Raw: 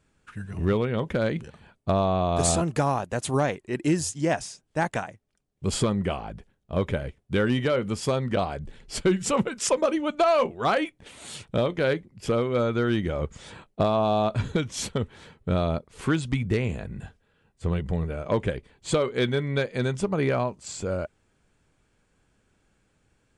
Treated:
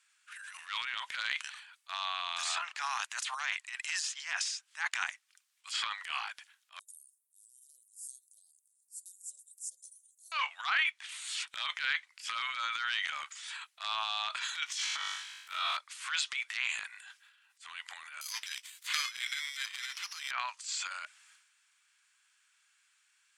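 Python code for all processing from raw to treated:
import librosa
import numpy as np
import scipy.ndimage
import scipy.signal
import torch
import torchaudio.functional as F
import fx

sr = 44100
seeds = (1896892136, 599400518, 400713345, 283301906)

y = fx.chain(x, sr, fx.cheby2_bandstop(low_hz=950.0, high_hz=2700.0, order=4, stop_db=80),
    fx.low_shelf(hz=410.0, db=-8.5), at=(6.79, 10.32))
y = fx.chain(y, sr, fx.law_mismatch(coded='A'),
    fx.room_flutter(wall_m=3.5, rt60_s=0.61), at=(14.66, 15.77))
y = fx.chain(y, sr, fx.block_float(bits=7),
    fx.bandpass_q(hz=7900.0, q=0.52),
    fx.resample_bad(factor=8, down='none', up='zero_stuff'), at=(18.21, 20.31))
y = scipy.signal.sosfilt(scipy.signal.bessel(8, 2000.0, 'highpass', norm='mag', fs=sr, output='sos'), y)
y = fx.env_lowpass_down(y, sr, base_hz=2700.0, full_db=-30.5)
y = fx.transient(y, sr, attack_db=-10, sustain_db=10)
y = y * 10.0 ** (6.0 / 20.0)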